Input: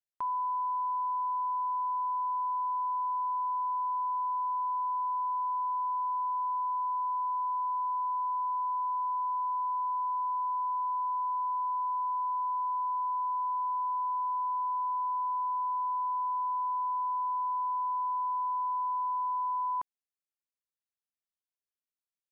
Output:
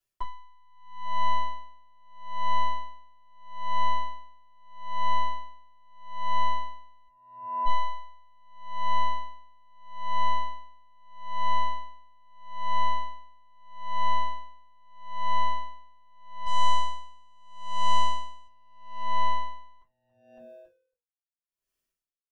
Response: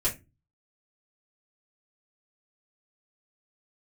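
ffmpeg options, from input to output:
-filter_complex "[0:a]asettb=1/sr,asplit=3[s0][s1][s2];[s0]atrim=end=16.464[s3];[s1]atrim=start=16.46:end=18.47,asetpts=PTS-STARTPTS,afade=t=in:d=0.004:c=qsin,afade=t=out:st=2.006:d=0.004:c=qsin,acontrast=32[s4];[s2]atrim=start=18.466[s5];[s3][s4]acrossfade=d=0.004:c1=hsin:c2=qsin[s6];[s6][s5]acrossfade=d=0.004:c1=qsin:c2=hsin,aeval=exprs='(tanh(44.7*val(0)+0.5)-tanh(0.5))/44.7':c=same,asplit=3[s7][s8][s9];[s7]afade=t=out:st=7.07:d=0.02[s10];[s8]asuperpass=centerf=1000:order=8:qfactor=1.1,afade=t=in:st=7.07:d=0.02,afade=t=out:st=7.65:d=0.02[s11];[s9]afade=t=in:st=7.65:d=0.02[s12];[s10][s11][s12]amix=inputs=3:normalize=0,asplit=5[s13][s14][s15][s16][s17];[s14]adelay=278,afreqshift=-120,volume=0.075[s18];[s15]adelay=556,afreqshift=-240,volume=0.0437[s19];[s16]adelay=834,afreqshift=-360,volume=0.0251[s20];[s17]adelay=1112,afreqshift=-480,volume=0.0146[s21];[s13][s18][s19][s20][s21]amix=inputs=5:normalize=0[s22];[1:a]atrim=start_sample=2205[s23];[s22][s23]afir=irnorm=-1:irlink=0,aeval=exprs='val(0)*pow(10,-37*(0.5-0.5*cos(2*PI*0.78*n/s))/20)':c=same,volume=2"

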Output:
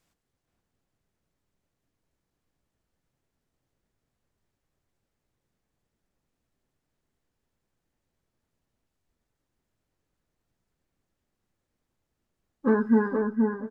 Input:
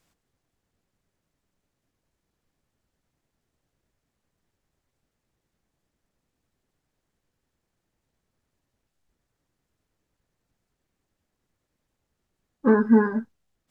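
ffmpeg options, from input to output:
-filter_complex "[0:a]asplit=2[s0][s1];[s1]adelay=474,lowpass=f=1500:p=1,volume=0.708,asplit=2[s2][s3];[s3]adelay=474,lowpass=f=1500:p=1,volume=0.15,asplit=2[s4][s5];[s5]adelay=474,lowpass=f=1500:p=1,volume=0.15[s6];[s0][s2][s4][s6]amix=inputs=4:normalize=0,volume=0.631"

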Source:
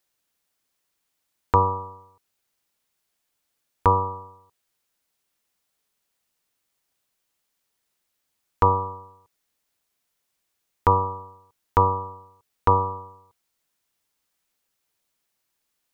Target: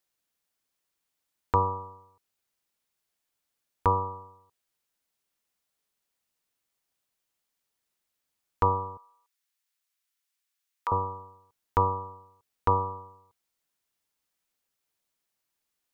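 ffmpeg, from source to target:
-filter_complex "[0:a]asettb=1/sr,asplit=3[s0][s1][s2];[s0]atrim=end=8.974[s3];[s1]atrim=start=8.97:end=10.92,asetpts=PTS-STARTPTS,afade=t=in:d=0.004:c=qsin,afade=t=out:st=1.946:d=0.004:c=qsin,highpass=1300[s4];[s2]atrim=start=10.916[s5];[s3][s4]acrossfade=d=0.004:c1=hsin:c2=qsin[s6];[s6][s5]acrossfade=d=0.004:c1=qsin:c2=hsin,volume=0.531"

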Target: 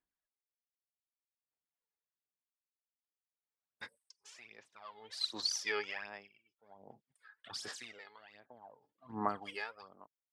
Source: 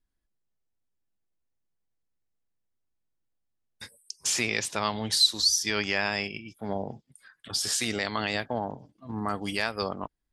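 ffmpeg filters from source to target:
-af "aphaser=in_gain=1:out_gain=1:delay=2.4:decay=0.66:speed=1.3:type=sinusoidal,bandpass=f=1200:t=q:w=0.62:csg=0,aeval=exprs='val(0)*pow(10,-23*(0.5-0.5*cos(2*PI*0.54*n/s))/20)':c=same,volume=0.531"

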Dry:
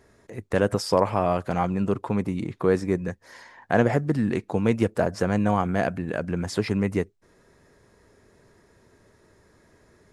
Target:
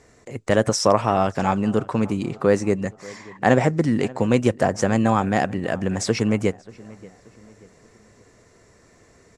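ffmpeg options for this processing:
-filter_complex "[0:a]asetrate=47628,aresample=44100,lowpass=f=7400:t=q:w=2.3,asplit=2[s0][s1];[s1]adelay=583,lowpass=f=2800:p=1,volume=0.0841,asplit=2[s2][s3];[s3]adelay=583,lowpass=f=2800:p=1,volume=0.44,asplit=2[s4][s5];[s5]adelay=583,lowpass=f=2800:p=1,volume=0.44[s6];[s0][s2][s4][s6]amix=inputs=4:normalize=0,volume=1.5"

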